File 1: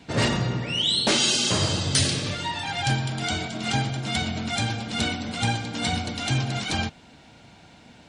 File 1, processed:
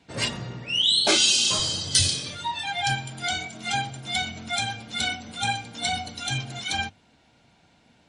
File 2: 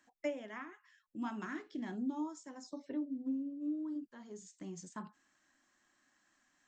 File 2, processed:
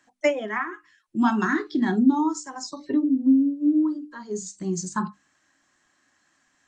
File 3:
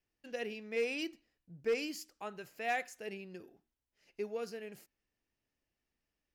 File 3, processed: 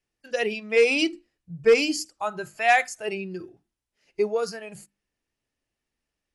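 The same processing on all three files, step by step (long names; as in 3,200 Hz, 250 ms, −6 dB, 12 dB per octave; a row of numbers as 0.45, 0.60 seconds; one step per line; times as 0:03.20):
mains-hum notches 50/100/150/200/250/300/350 Hz
noise reduction from a noise print of the clip's start 12 dB
AC-3 64 kbit/s 44,100 Hz
loudness normalisation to −24 LKFS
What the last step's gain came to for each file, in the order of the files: +2.5, +19.5, +15.5 decibels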